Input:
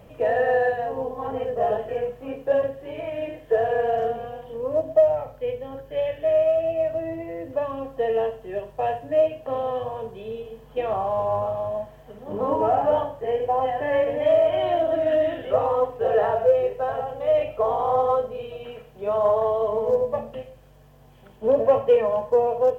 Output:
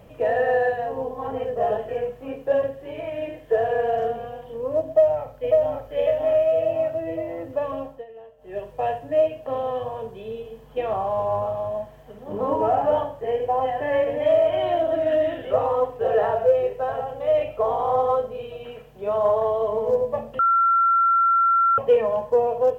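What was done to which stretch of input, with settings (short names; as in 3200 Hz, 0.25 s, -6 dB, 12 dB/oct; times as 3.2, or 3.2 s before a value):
4.88–5.9 echo throw 0.55 s, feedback 60%, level -2 dB
7.8–8.62 dip -20 dB, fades 0.25 s
20.39–21.78 bleep 1360 Hz -15 dBFS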